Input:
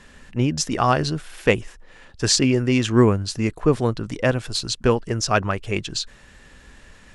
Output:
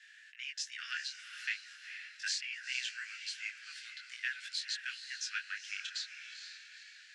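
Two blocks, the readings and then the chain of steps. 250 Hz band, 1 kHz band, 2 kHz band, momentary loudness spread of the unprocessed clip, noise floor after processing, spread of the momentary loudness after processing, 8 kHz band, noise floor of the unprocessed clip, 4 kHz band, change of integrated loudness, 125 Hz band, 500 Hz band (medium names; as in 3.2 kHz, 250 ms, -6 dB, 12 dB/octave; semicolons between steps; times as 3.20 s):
under -40 dB, -29.5 dB, -9.0 dB, 9 LU, -57 dBFS, 10 LU, -16.5 dB, -49 dBFS, -12.0 dB, -18.0 dB, under -40 dB, under -40 dB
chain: steep high-pass 1.5 kHz 96 dB/octave; compression 3:1, threshold -28 dBFS, peak gain reduction 10.5 dB; distance through air 85 m; echo that smears into a reverb 461 ms, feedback 43%, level -9 dB; detune thickener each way 15 cents; trim -1 dB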